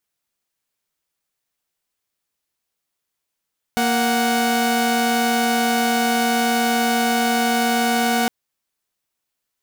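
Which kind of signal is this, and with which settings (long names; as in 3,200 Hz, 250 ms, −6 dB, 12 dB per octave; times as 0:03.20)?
held notes A#3/F#5 saw, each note −17 dBFS 4.51 s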